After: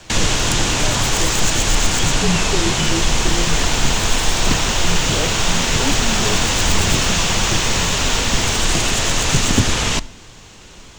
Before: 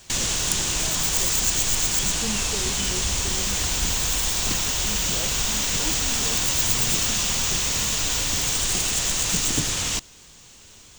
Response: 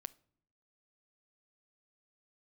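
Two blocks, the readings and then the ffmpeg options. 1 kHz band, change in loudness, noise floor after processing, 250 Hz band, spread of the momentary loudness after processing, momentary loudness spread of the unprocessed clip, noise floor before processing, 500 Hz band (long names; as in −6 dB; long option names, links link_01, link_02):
+11.5 dB, +4.5 dB, −41 dBFS, +11.0 dB, 1 LU, 3 LU, −48 dBFS, +11.5 dB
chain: -filter_complex "[0:a]aemphasis=mode=reproduction:type=75kf,afreqshift=-36,asplit=2[link_01][link_02];[1:a]atrim=start_sample=2205,asetrate=33957,aresample=44100[link_03];[link_02][link_03]afir=irnorm=-1:irlink=0,volume=14.5dB[link_04];[link_01][link_04]amix=inputs=2:normalize=0,volume=-1dB"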